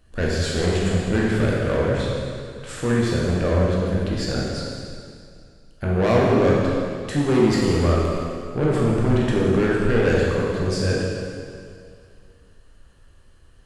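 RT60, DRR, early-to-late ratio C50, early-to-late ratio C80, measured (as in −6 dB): 2.3 s, −5.0 dB, −2.0 dB, 0.0 dB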